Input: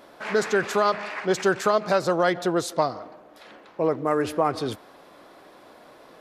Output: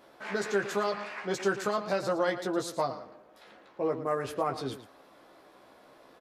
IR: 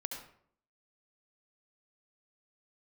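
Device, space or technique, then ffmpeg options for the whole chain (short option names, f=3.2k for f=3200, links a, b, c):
slapback doubling: -filter_complex "[0:a]asplit=3[a][b][c];[b]adelay=15,volume=-4dB[d];[c]adelay=114,volume=-12dB[e];[a][d][e]amix=inputs=3:normalize=0,volume=-8.5dB"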